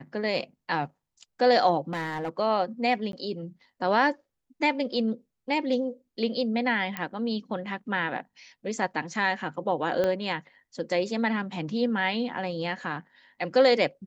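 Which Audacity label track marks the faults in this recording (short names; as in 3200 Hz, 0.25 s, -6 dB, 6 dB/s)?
1.930000	2.290000	clipped -26.5 dBFS
3.120000	3.130000	gap 12 ms
6.970000	6.970000	pop -16 dBFS
10.040000	10.040000	pop -15 dBFS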